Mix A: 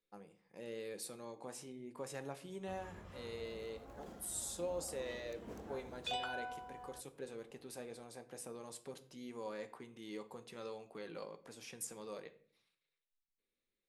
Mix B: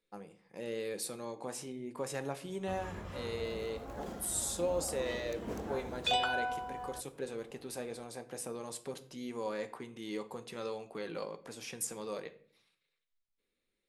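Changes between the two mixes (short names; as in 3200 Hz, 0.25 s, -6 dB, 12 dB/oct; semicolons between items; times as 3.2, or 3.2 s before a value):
speech +7.0 dB; background +9.5 dB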